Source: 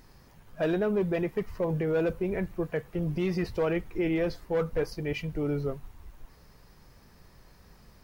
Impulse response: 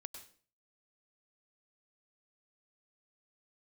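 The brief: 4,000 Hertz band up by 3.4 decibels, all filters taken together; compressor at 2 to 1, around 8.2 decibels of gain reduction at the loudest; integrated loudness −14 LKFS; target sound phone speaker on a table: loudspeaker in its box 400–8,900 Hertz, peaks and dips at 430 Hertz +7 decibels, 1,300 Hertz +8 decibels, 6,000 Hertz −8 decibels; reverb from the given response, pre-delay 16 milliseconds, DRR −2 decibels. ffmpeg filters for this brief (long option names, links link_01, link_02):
-filter_complex "[0:a]equalizer=frequency=4000:width_type=o:gain=5.5,acompressor=threshold=-39dB:ratio=2,asplit=2[link_01][link_02];[1:a]atrim=start_sample=2205,adelay=16[link_03];[link_02][link_03]afir=irnorm=-1:irlink=0,volume=6.5dB[link_04];[link_01][link_04]amix=inputs=2:normalize=0,highpass=frequency=400:width=0.5412,highpass=frequency=400:width=1.3066,equalizer=frequency=430:width_type=q:width=4:gain=7,equalizer=frequency=1300:width_type=q:width=4:gain=8,equalizer=frequency=6000:width_type=q:width=4:gain=-8,lowpass=frequency=8900:width=0.5412,lowpass=frequency=8900:width=1.3066,volume=19dB"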